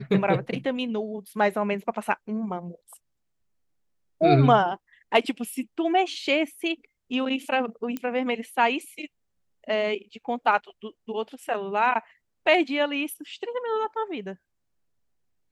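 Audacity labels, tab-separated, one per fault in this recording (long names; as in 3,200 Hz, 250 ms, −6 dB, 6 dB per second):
7.970000	7.970000	click −18 dBFS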